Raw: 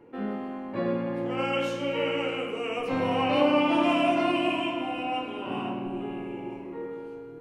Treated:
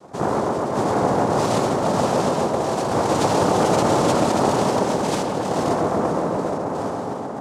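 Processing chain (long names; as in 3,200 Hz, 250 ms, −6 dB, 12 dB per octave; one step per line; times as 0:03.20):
spectral tilt −4 dB per octave
brickwall limiter −15 dBFS, peak gain reduction 8 dB
flanger 0.93 Hz, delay 3.7 ms, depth 9 ms, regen +76%
cochlear-implant simulation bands 2
tape delay 135 ms, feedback 90%, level −4 dB, low-pass 1,700 Hz
level +6.5 dB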